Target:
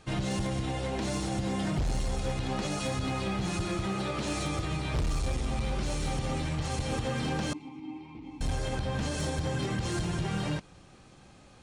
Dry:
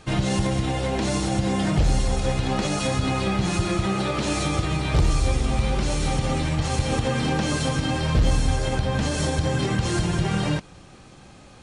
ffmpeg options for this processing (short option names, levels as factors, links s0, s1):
-filter_complex "[0:a]asettb=1/sr,asplit=3[s0][s1][s2];[s0]atrim=end=7.534[s3];[s1]atrim=start=7.53:end=8.41,asetpts=PTS-STARTPTS,afade=t=in:d=0.004:c=qsin,afade=t=out:st=0.876:d=0.004:c=qsin,asplit=3[s4][s5][s6];[s4]bandpass=f=300:t=q:w=8,volume=1[s7];[s5]bandpass=f=870:t=q:w=8,volume=0.501[s8];[s6]bandpass=f=2240:t=q:w=8,volume=0.355[s9];[s7][s8][s9]amix=inputs=3:normalize=0[s10];[s2]atrim=start=8.406[s11];[s3][s10]acrossfade=d=0.004:c1=hsin:c2=qsin[s12];[s12][s11]acrossfade=d=0.004:c1=qsin:c2=hsin,volume=7.5,asoftclip=hard,volume=0.133,volume=0.422"